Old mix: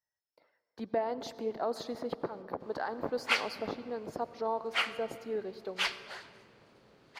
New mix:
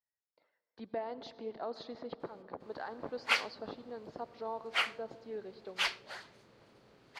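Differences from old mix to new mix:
speech: add transistor ladder low-pass 5,100 Hz, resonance 30%
background: send off

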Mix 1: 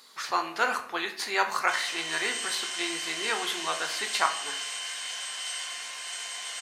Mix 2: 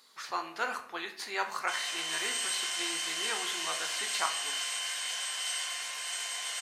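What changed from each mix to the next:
speech −7.0 dB
background: add parametric band 13,000 Hz +10.5 dB 0.35 octaves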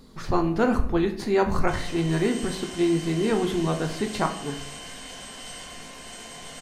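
background −6.5 dB
master: remove high-pass filter 1,300 Hz 12 dB per octave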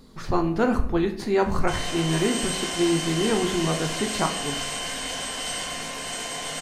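background +9.5 dB

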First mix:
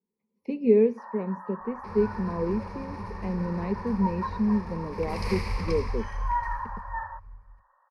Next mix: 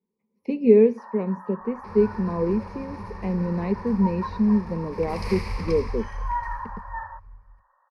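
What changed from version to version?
speech +4.5 dB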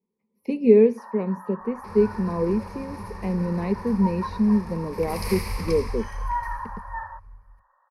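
master: remove high-frequency loss of the air 89 metres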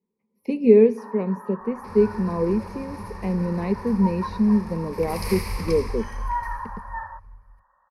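reverb: on, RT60 1.5 s

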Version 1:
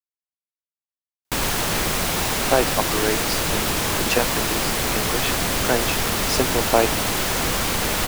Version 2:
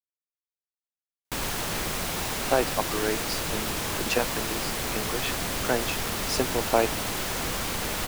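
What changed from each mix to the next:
speech −4.5 dB
background −7.5 dB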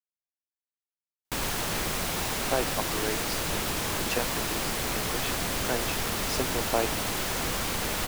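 speech −5.0 dB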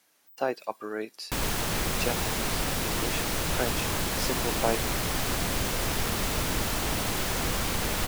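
speech: entry −2.10 s
background: add low-shelf EQ 180 Hz +5 dB

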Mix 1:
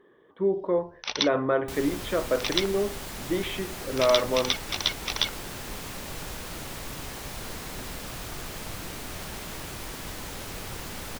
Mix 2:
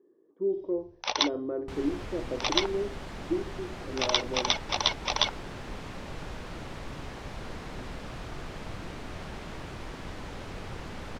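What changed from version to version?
speech: add resonant band-pass 330 Hz, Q 3.3
first sound: add flat-topped bell 740 Hz +9 dB 1.3 octaves
second sound: add head-to-tape spacing loss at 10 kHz 20 dB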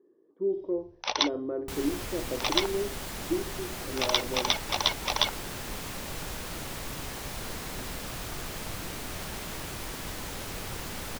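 second sound: remove head-to-tape spacing loss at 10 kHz 20 dB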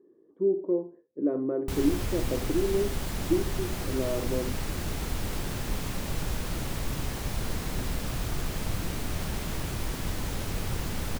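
first sound: muted
master: add low-shelf EQ 270 Hz +10.5 dB

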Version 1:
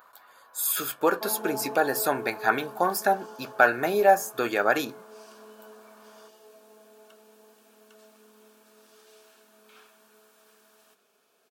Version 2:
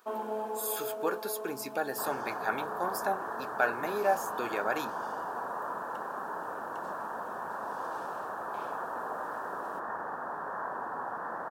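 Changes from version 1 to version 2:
speech −9.0 dB
first sound: entry −1.15 s
second sound: unmuted

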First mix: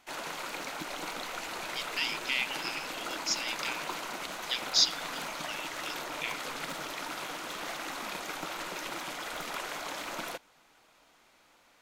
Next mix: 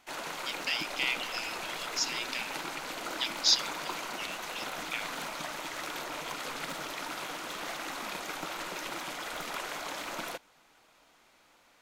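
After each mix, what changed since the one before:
speech: entry −1.30 s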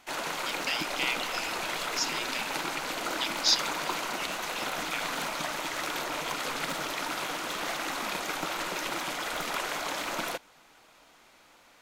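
background +5.0 dB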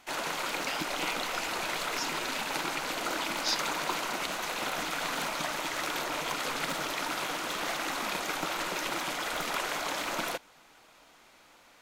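speech −7.5 dB

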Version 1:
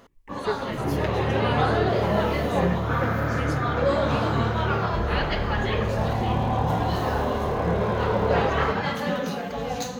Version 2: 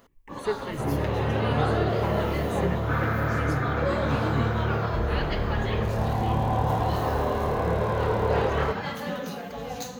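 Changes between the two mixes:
first sound −5.5 dB
master: add high-shelf EQ 10,000 Hz +9.5 dB

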